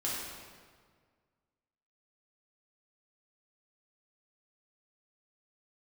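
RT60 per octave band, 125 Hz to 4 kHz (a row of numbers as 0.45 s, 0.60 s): 2.1 s, 1.9 s, 1.8 s, 1.7 s, 1.5 s, 1.3 s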